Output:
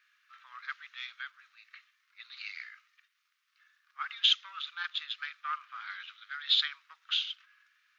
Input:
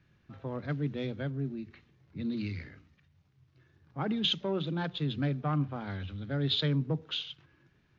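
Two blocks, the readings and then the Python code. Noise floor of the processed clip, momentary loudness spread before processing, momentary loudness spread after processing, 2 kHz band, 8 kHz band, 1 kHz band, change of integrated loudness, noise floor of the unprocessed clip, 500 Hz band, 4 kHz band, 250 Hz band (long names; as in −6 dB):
−77 dBFS, 14 LU, 18 LU, +5.5 dB, can't be measured, 0.0 dB, +0.5 dB, −69 dBFS, below −40 dB, +5.0 dB, below −40 dB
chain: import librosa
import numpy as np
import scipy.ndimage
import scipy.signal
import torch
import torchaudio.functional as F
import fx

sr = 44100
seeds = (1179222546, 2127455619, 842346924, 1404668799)

y = scipy.signal.sosfilt(scipy.signal.cheby1(5, 1.0, 1200.0, 'highpass', fs=sr, output='sos'), x)
y = y * librosa.db_to_amplitude(6.0)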